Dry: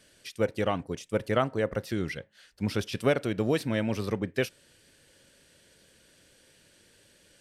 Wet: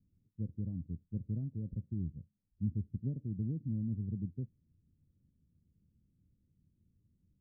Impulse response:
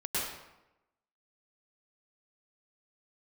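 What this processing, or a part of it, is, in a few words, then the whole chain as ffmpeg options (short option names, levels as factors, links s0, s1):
the neighbour's flat through the wall: -af "lowpass=f=210:w=0.5412,lowpass=f=210:w=1.3066,equalizer=f=81:t=o:w=0.43:g=5.5,volume=0.708"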